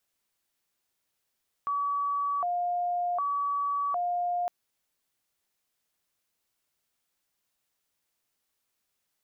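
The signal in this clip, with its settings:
siren hi-lo 707–1,140 Hz 0.66 per second sine −26 dBFS 2.81 s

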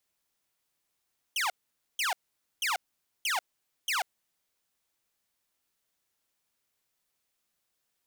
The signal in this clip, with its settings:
repeated falling chirps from 3,300 Hz, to 670 Hz, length 0.14 s saw, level −24 dB, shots 5, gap 0.49 s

